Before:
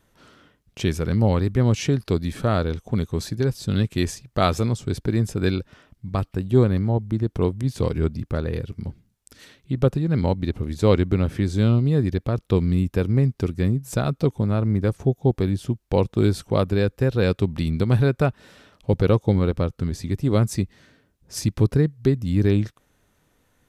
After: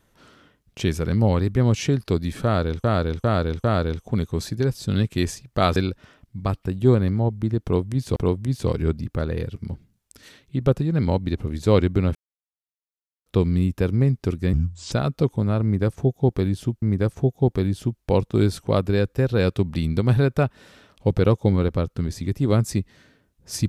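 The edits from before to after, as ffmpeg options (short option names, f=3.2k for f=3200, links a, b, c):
-filter_complex "[0:a]asplit=11[a][b][c][d][e][f][g][h][i][j][k];[a]atrim=end=2.842[l];[b]atrim=start=2.438:end=2.842[m];[c]atrim=start=2.438:end=2.842[n];[d]atrim=start=2.438:end=4.562[o];[e]atrim=start=5.448:end=7.852[p];[f]atrim=start=7.318:end=11.31,asetpts=PTS-STARTPTS,afade=t=out:st=3.988:d=0.004:c=hsin[q];[g]atrim=start=11.31:end=12.42,asetpts=PTS-STARTPTS,volume=0[r];[h]atrim=start=12.42:end=13.694,asetpts=PTS-STARTPTS,afade=t=in:d=0.004:c=hsin[s];[i]atrim=start=13.69:end=13.94,asetpts=PTS-STARTPTS,asetrate=28224,aresample=44100[t];[j]atrim=start=13.936:end=15.842[u];[k]atrim=start=14.648[v];[l][m]acrossfade=d=0.004:c1=hsin:c2=hsin[w];[w][n]acrossfade=d=0.004:c1=hsin:c2=hsin[x];[x][o]acrossfade=d=0.004:c1=hsin:c2=hsin[y];[y][p]acrossfade=d=0.004:c1=hsin:c2=hsin[z];[q][r][s]concat=n=3:v=0:a=1[aa];[z][aa]acrossfade=d=0.004:c1=hsin:c2=hsin[ab];[ab][t]acrossfade=d=0.004:c1=hsin:c2=hsin[ac];[ac][u]acrossfade=d=0.004:c1=hsin:c2=hsin[ad];[ad][v]acrossfade=d=0.004:c1=hsin:c2=hsin"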